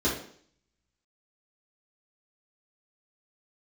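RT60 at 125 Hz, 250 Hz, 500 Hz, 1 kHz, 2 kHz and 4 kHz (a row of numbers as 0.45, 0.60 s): 0.60, 0.60, 0.60, 0.55, 0.55, 0.60 s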